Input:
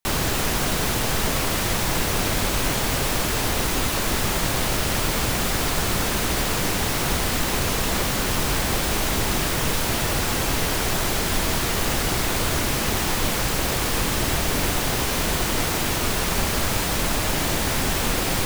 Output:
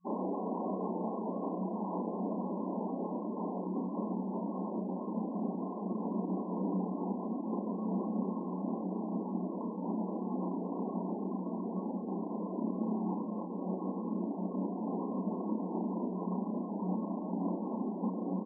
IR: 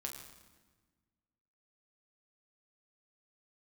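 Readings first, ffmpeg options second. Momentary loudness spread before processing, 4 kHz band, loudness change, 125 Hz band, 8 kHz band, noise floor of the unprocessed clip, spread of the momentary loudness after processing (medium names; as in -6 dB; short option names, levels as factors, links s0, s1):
0 LU, under -40 dB, -14.0 dB, -15.0 dB, under -40 dB, -24 dBFS, 2 LU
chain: -filter_complex "[0:a]afftfilt=real='re*gte(hypot(re,im),0.1)':imag='im*gte(hypot(re,im),0.1)':win_size=1024:overlap=0.75,asubboost=boost=4:cutoff=230,asplit=2[s0][s1];[s1]aecho=0:1:32|50:0.668|0.237[s2];[s0][s2]amix=inputs=2:normalize=0,acompressor=threshold=0.224:ratio=4,afftfilt=real='re*between(b*sr/4096,180,1100)':imag='im*between(b*sr/4096,180,1100)':win_size=4096:overlap=0.75,volume=0.447"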